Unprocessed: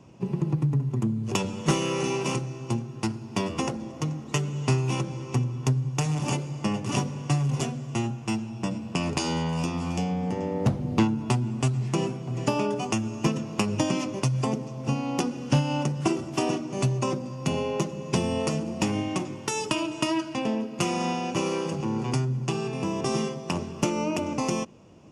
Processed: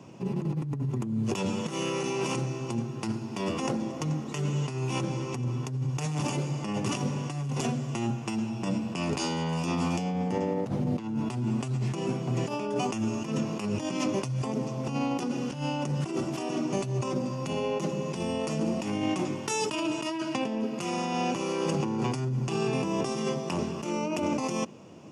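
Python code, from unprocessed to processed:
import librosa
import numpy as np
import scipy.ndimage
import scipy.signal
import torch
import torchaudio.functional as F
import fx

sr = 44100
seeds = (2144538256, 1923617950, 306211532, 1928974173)

y = scipy.signal.sosfilt(scipy.signal.butter(2, 130.0, 'highpass', fs=sr, output='sos'), x)
y = fx.over_compress(y, sr, threshold_db=-31.0, ratio=-1.0)
y = F.gain(torch.from_numpy(y), 1.5).numpy()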